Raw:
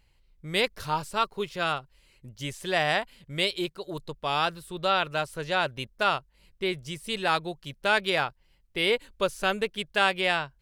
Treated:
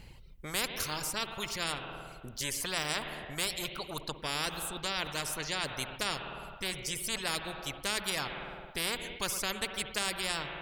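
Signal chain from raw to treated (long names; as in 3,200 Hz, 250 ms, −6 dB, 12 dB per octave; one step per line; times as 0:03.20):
low-shelf EQ 390 Hz +10 dB
spring reverb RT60 1.3 s, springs 53 ms, chirp 70 ms, DRR 10 dB
reverb reduction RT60 1.4 s
every bin compressed towards the loudest bin 4 to 1
level −5.5 dB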